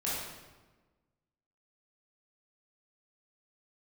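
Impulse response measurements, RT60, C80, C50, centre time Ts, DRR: 1.3 s, 1.5 dB, −2.0 dB, 87 ms, −8.5 dB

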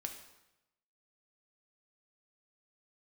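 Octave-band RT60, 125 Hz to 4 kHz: 1.1, 0.95, 0.95, 0.90, 0.90, 0.80 seconds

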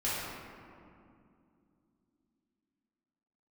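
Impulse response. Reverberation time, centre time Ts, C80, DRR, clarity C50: 2.5 s, 141 ms, −0.5 dB, −10.5 dB, −3.5 dB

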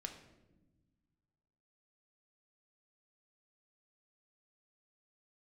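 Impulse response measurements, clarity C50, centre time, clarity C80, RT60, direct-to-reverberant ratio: 8.5 dB, 20 ms, 11.0 dB, 1.1 s, 4.0 dB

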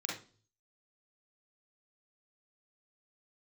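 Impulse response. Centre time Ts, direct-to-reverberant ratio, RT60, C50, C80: 40 ms, −3.5 dB, 0.40 s, 3.0 dB, 11.0 dB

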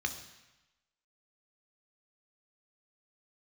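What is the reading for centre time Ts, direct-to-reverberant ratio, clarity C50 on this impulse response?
14 ms, 5.5 dB, 10.0 dB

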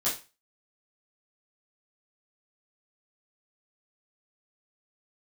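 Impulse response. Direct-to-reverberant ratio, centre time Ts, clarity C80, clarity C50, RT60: −10.0 dB, 29 ms, 14.5 dB, 7.0 dB, 0.30 s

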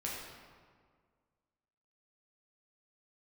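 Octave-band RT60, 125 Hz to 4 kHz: 2.0, 2.0, 1.9, 1.8, 1.4, 1.1 seconds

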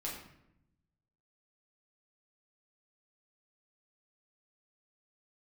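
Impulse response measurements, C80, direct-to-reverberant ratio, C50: 7.0 dB, −5.0 dB, 4.0 dB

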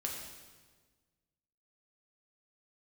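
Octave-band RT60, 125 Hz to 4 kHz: 1.9, 1.7, 1.5, 1.4, 1.3, 1.3 seconds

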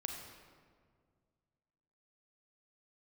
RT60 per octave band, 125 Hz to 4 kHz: 2.6, 2.3, 2.1, 1.8, 1.4, 1.1 seconds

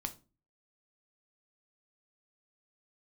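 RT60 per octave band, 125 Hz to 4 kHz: 0.55, 0.50, 0.35, 0.30, 0.25, 0.25 seconds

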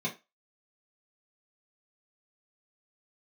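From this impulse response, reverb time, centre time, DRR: 0.25 s, 14 ms, −5.5 dB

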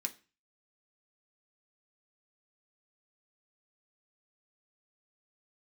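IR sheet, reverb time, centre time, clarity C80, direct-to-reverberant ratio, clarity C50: 0.35 s, 6 ms, 23.0 dB, 4.0 dB, 17.5 dB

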